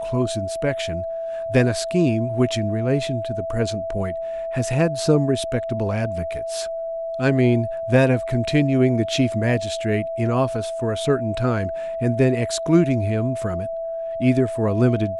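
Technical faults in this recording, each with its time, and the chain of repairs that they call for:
whine 660 Hz -25 dBFS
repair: band-stop 660 Hz, Q 30

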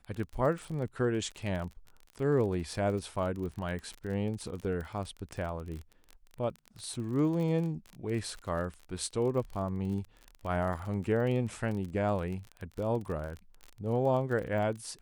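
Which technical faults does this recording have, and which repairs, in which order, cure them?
crackle 32 per s -36 dBFS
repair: de-click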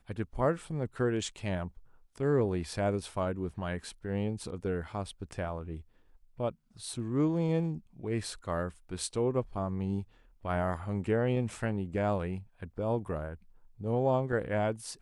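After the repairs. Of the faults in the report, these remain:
nothing left

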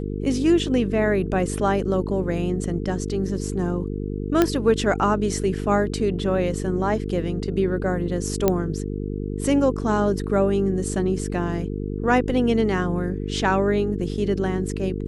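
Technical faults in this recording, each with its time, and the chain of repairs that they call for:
buzz 50 Hz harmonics 9 -28 dBFS
4.42 s: pop -5 dBFS
8.48 s: pop -5 dBFS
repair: de-click; de-hum 50 Hz, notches 9

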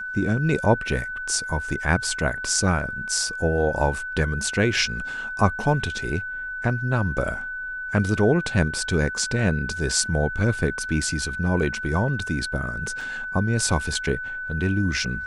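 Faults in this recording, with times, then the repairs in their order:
whine 1.5 kHz -29 dBFS
13.01 s: dropout 3.4 ms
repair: band-stop 1.5 kHz, Q 30; interpolate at 13.01 s, 3.4 ms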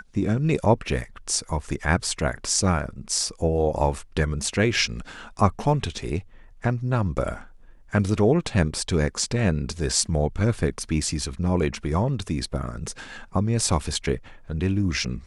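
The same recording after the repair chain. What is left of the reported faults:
nothing left

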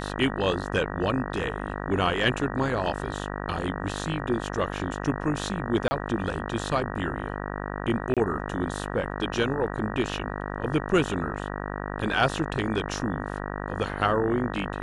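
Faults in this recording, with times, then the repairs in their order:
buzz 50 Hz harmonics 38 -33 dBFS
5.88–5.91 s: dropout 30 ms
8.14–8.17 s: dropout 27 ms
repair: de-hum 50 Hz, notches 38; interpolate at 5.88 s, 30 ms; interpolate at 8.14 s, 27 ms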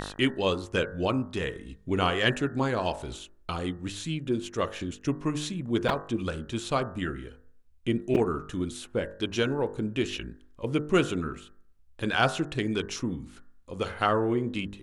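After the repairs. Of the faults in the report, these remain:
nothing left

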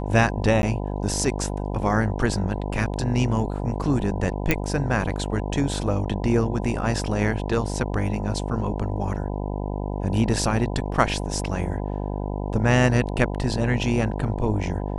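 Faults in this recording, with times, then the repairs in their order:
buzz 50 Hz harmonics 20 -28 dBFS
0.62–0.63 s: dropout 11 ms
4.51 s: pop -5 dBFS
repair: de-click; de-hum 50 Hz, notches 20; interpolate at 0.62 s, 11 ms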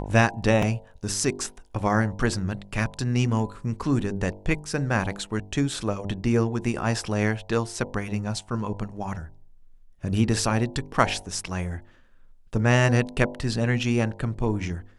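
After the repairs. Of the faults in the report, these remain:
4.51 s: pop

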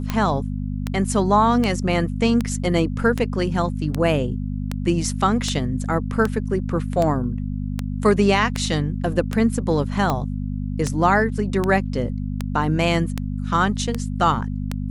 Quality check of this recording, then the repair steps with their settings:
hum 50 Hz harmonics 5 -26 dBFS
tick 78 rpm -9 dBFS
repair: de-click; de-hum 50 Hz, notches 5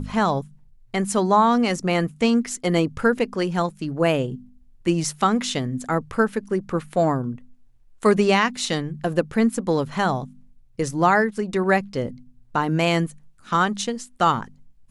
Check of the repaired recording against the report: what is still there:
nothing left

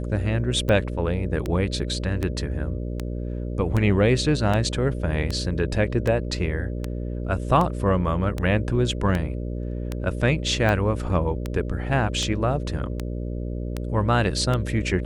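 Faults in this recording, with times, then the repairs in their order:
buzz 60 Hz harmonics 10 -29 dBFS
tick 78 rpm -13 dBFS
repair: de-click; de-hum 60 Hz, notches 10

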